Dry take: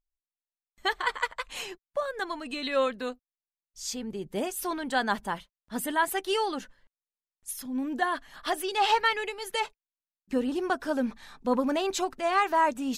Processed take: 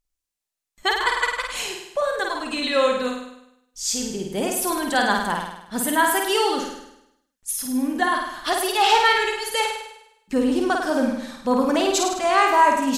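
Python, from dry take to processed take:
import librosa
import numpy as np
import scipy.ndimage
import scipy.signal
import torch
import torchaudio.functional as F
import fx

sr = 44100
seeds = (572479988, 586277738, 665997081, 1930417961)

p1 = fx.peak_eq(x, sr, hz=7800.0, db=5.0, octaves=1.7)
p2 = p1 + fx.room_flutter(p1, sr, wall_m=8.8, rt60_s=0.82, dry=0)
y = p2 * 10.0 ** (5.0 / 20.0)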